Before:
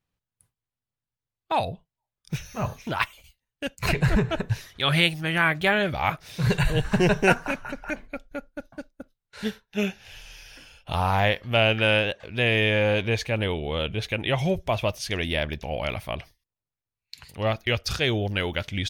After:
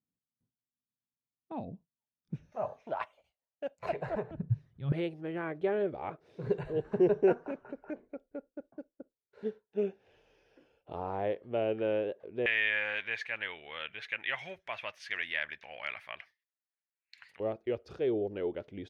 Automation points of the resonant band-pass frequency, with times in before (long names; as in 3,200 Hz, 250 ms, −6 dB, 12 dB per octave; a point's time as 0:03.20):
resonant band-pass, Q 2.9
240 Hz
from 0:02.52 640 Hz
from 0:04.31 140 Hz
from 0:04.92 400 Hz
from 0:12.46 1,800 Hz
from 0:17.40 400 Hz